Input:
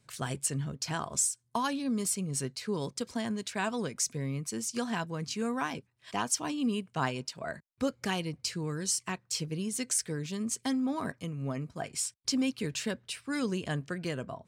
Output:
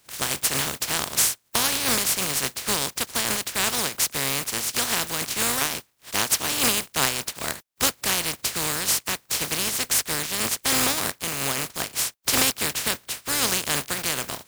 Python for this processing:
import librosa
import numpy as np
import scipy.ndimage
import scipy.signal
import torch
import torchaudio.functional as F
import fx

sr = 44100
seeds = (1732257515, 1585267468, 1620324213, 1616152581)

y = fx.spec_flatten(x, sr, power=0.21)
y = y * 10.0 ** (8.5 / 20.0)